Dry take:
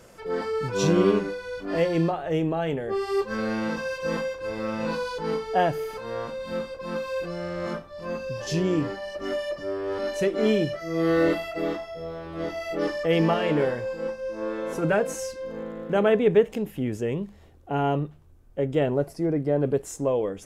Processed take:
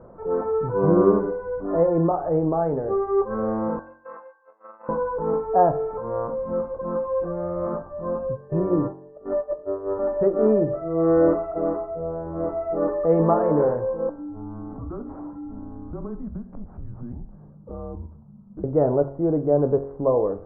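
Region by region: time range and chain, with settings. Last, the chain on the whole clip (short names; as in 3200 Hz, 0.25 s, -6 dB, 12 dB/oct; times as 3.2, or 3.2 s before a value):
3.79–4.89 gate -29 dBFS, range -21 dB + HPF 1500 Hz
8.34–9.98 gate -30 dBFS, range -23 dB + whine 440 Hz -52 dBFS
14.09–18.64 frequency shift -230 Hz + compressor 3:1, threshold -41 dBFS + decimation joined by straight lines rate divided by 8×
whole clip: de-hum 46.17 Hz, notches 40; dynamic EQ 200 Hz, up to -5 dB, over -37 dBFS, Q 0.75; steep low-pass 1200 Hz 36 dB/oct; gain +6.5 dB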